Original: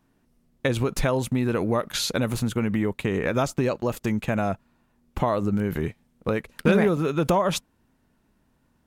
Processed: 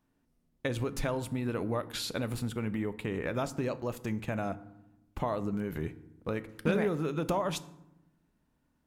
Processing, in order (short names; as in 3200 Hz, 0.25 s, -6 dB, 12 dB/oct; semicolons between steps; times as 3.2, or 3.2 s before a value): 1.1–3.49 notch 6300 Hz, Q 8.6; FDN reverb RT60 0.88 s, low-frequency decay 1.55×, high-frequency decay 0.55×, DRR 12.5 dB; gain -9 dB